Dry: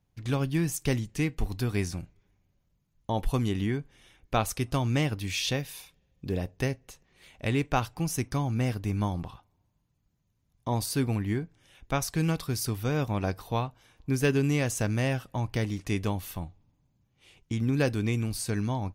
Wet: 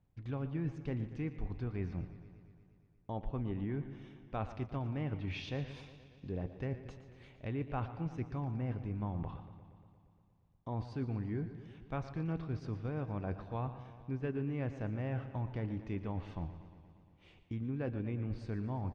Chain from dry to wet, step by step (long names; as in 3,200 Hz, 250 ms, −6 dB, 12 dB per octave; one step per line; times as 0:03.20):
head-to-tape spacing loss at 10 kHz 28 dB
reversed playback
downward compressor 4 to 1, threshold −37 dBFS, peak gain reduction 14 dB
reversed playback
treble cut that deepens with the level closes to 2,500 Hz, closed at −34.5 dBFS
single-tap delay 145 ms −17.5 dB
feedback echo with a swinging delay time 117 ms, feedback 72%, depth 82 cents, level −14 dB
level +1 dB